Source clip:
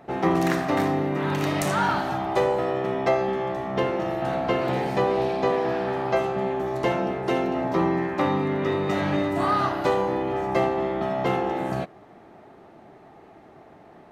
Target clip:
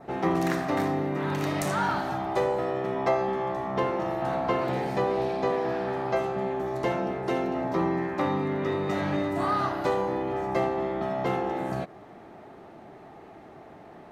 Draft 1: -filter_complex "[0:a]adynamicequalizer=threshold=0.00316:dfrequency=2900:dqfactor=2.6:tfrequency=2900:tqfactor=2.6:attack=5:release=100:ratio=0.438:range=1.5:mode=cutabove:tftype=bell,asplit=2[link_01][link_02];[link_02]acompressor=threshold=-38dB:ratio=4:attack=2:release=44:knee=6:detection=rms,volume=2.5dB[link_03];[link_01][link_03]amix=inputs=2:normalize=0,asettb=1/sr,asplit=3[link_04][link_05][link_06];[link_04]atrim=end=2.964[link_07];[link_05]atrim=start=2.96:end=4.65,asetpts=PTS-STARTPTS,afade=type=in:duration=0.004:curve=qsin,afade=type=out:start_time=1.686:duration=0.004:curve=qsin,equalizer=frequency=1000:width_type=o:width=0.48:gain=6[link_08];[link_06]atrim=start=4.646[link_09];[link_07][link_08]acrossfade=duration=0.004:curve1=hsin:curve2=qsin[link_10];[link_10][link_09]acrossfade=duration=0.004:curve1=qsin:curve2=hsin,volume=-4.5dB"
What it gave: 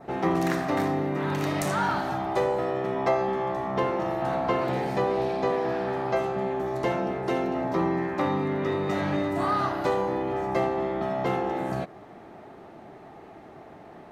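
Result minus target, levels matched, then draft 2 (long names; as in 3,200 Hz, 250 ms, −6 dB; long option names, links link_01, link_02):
downward compressor: peak gain reduction −5.5 dB
-filter_complex "[0:a]adynamicequalizer=threshold=0.00316:dfrequency=2900:dqfactor=2.6:tfrequency=2900:tqfactor=2.6:attack=5:release=100:ratio=0.438:range=1.5:mode=cutabove:tftype=bell,asplit=2[link_01][link_02];[link_02]acompressor=threshold=-45.5dB:ratio=4:attack=2:release=44:knee=6:detection=rms,volume=2.5dB[link_03];[link_01][link_03]amix=inputs=2:normalize=0,asettb=1/sr,asplit=3[link_04][link_05][link_06];[link_04]atrim=end=2.964[link_07];[link_05]atrim=start=2.96:end=4.65,asetpts=PTS-STARTPTS,afade=type=in:duration=0.004:curve=qsin,afade=type=out:start_time=1.686:duration=0.004:curve=qsin,equalizer=frequency=1000:width_type=o:width=0.48:gain=6[link_08];[link_06]atrim=start=4.646[link_09];[link_07][link_08]acrossfade=duration=0.004:curve1=hsin:curve2=qsin[link_10];[link_10][link_09]acrossfade=duration=0.004:curve1=qsin:curve2=hsin,volume=-4.5dB"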